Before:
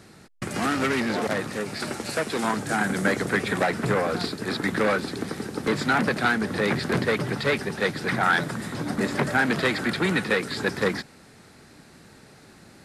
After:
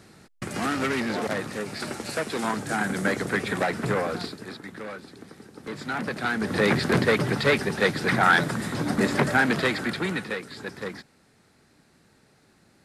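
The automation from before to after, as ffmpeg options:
ffmpeg -i in.wav -af "volume=15dB,afade=type=out:start_time=4.01:duration=0.61:silence=0.237137,afade=type=in:start_time=5.55:duration=0.76:silence=0.316228,afade=type=in:start_time=6.31:duration=0.28:silence=0.446684,afade=type=out:start_time=9.12:duration=1.33:silence=0.237137" out.wav

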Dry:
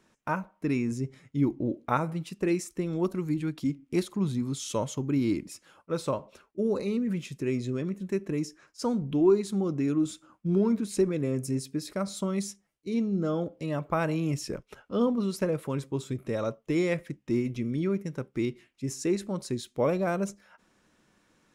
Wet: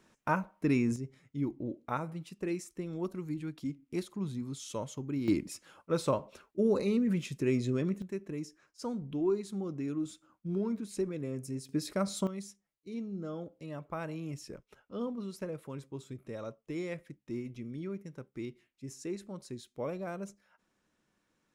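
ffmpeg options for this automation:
ffmpeg -i in.wav -af "asetnsamples=nb_out_samples=441:pad=0,asendcmd='0.96 volume volume -8dB;5.28 volume volume 0dB;8.02 volume volume -8.5dB;11.69 volume volume -0.5dB;12.27 volume volume -11dB',volume=0dB" out.wav

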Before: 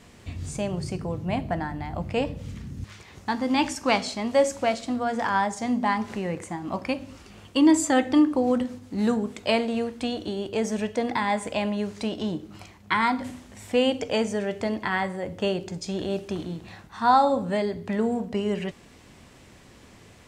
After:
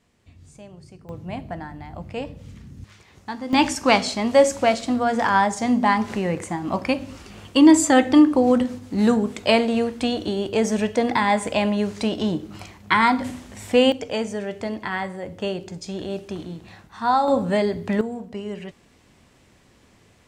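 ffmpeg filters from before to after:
ffmpeg -i in.wav -af "asetnsamples=nb_out_samples=441:pad=0,asendcmd='1.09 volume volume -4.5dB;3.53 volume volume 5.5dB;13.92 volume volume -1dB;17.28 volume volume 5dB;18.01 volume volume -5dB',volume=-14.5dB" out.wav

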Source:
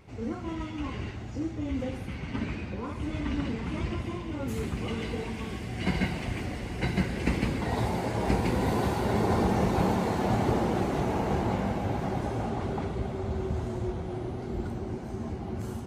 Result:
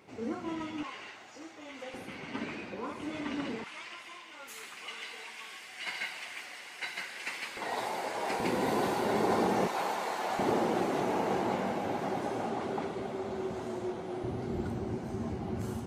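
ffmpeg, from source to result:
ffmpeg -i in.wav -af "asetnsamples=nb_out_samples=441:pad=0,asendcmd='0.83 highpass f 780;1.94 highpass f 310;3.64 highpass f 1300;7.57 highpass f 590;8.4 highpass f 270;9.67 highpass f 710;10.39 highpass f 270;14.24 highpass f 94',highpass=240" out.wav

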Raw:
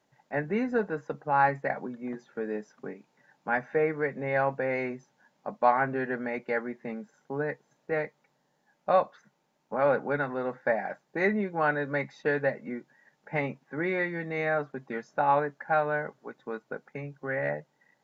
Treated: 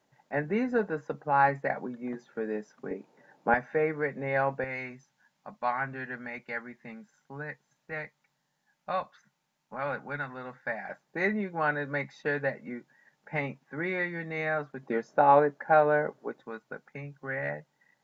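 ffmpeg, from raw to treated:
ffmpeg -i in.wav -af "asetnsamples=nb_out_samples=441:pad=0,asendcmd='2.91 equalizer g 10.5;3.54 equalizer g -1.5;4.64 equalizer g -13;10.89 equalizer g -4;14.83 equalizer g 6.5;16.42 equalizer g -5.5',equalizer=frequency=420:width_type=o:width=2.1:gain=0" out.wav

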